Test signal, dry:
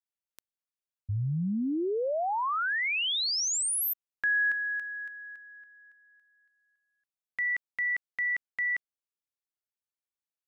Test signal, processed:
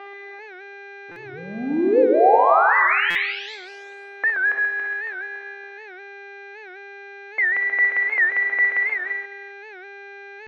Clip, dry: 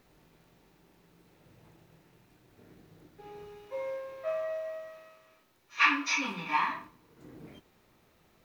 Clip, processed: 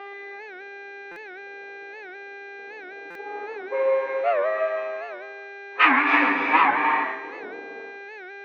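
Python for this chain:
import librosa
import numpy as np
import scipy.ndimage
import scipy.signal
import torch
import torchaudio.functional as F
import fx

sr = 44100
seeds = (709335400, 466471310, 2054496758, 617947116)

p1 = fx.envelope_flatten(x, sr, power=0.6)
p2 = fx.dynamic_eq(p1, sr, hz=530.0, q=1.1, threshold_db=-44.0, ratio=4.0, max_db=-4)
p3 = fx.leveller(p2, sr, passes=1)
p4 = fx.env_lowpass(p3, sr, base_hz=670.0, full_db=-28.5)
p5 = fx.dmg_buzz(p4, sr, base_hz=400.0, harmonics=17, level_db=-44.0, tilt_db=-1, odd_only=False)
p6 = fx.cabinet(p5, sr, low_hz=290.0, low_slope=24, high_hz=2300.0, hz=(330.0, 470.0, 760.0, 1200.0, 2000.0), db=(3, 10, 9, 3, 4))
p7 = p6 + fx.echo_multitap(p6, sr, ms=(47, 62, 71, 107, 133, 390), db=(-13.5, -9.5, -15.5, -17.5, -6.5, -19.0), dry=0)
p8 = fx.rev_gated(p7, sr, seeds[0], gate_ms=370, shape='rising', drr_db=2.5)
p9 = fx.buffer_glitch(p8, sr, at_s=(1.11, 3.1), block=256, repeats=8)
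p10 = fx.record_warp(p9, sr, rpm=78.0, depth_cents=160.0)
y = p10 * 10.0 ** (4.0 / 20.0)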